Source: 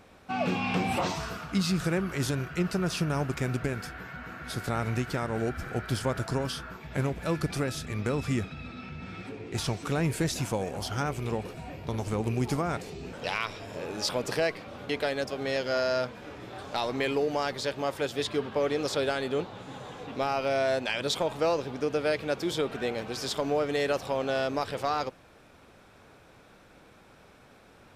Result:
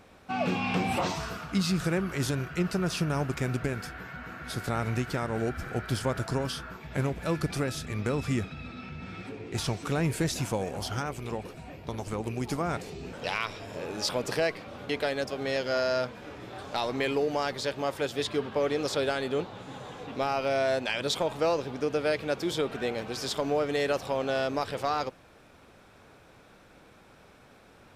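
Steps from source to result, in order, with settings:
0:10.99–0:12.61: harmonic and percussive parts rebalanced harmonic −6 dB

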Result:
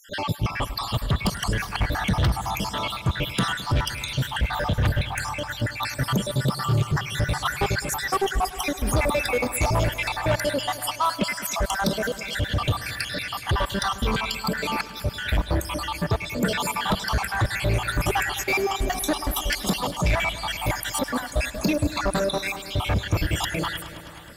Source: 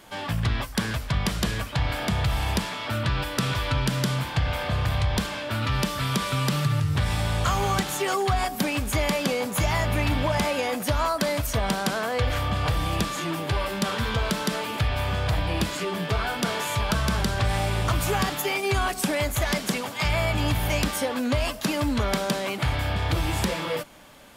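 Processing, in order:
time-frequency cells dropped at random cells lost 72%
soft clipping −24 dBFS, distortion −12 dB
echo machine with several playback heads 105 ms, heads first and second, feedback 72%, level −19 dB
level +8 dB

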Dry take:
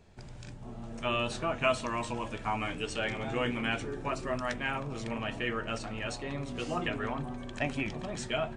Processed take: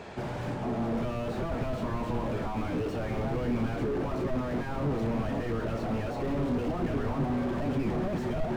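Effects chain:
mid-hump overdrive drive 32 dB, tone 1,300 Hz, clips at −13.5 dBFS
slew-rate limiting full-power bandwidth 15 Hz

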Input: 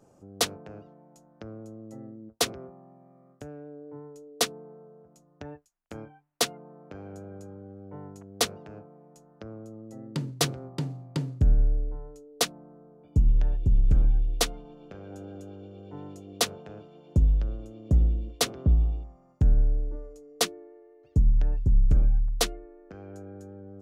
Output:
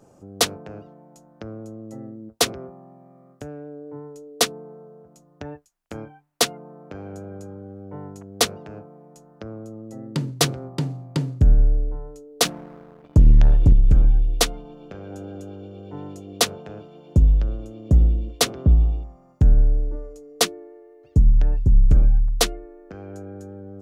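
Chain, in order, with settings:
0:12.45–0:13.73: leveller curve on the samples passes 2
level +6 dB

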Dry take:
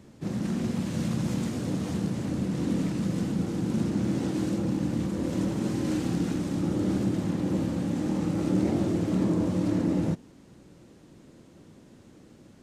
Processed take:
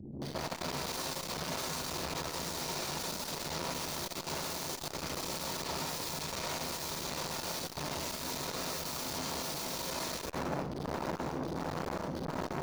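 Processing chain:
spectral envelope exaggerated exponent 3
0:07.04–0:09.40: high-pass filter 44 Hz 24 dB per octave
mains-hum notches 60/120/180/240 Hz
automatic gain control gain up to 13.5 dB
square-wave tremolo 1.4 Hz, depth 60%, duty 65%
wrap-around overflow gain 37 dB
convolution reverb RT60 0.55 s, pre-delay 130 ms, DRR −11 dB
saturating transformer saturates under 1,200 Hz
level −6 dB

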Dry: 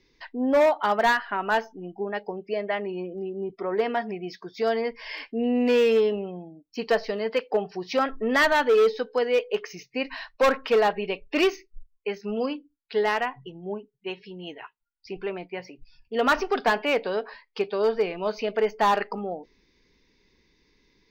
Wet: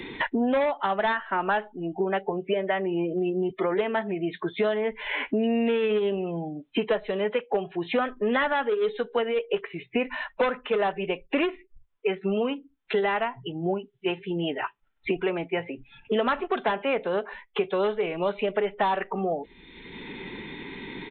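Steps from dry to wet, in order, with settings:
downsampling to 8,000 Hz
phase-vocoder pitch shift with formants kept −1 semitone
multiband upward and downward compressor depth 100%
level −1 dB

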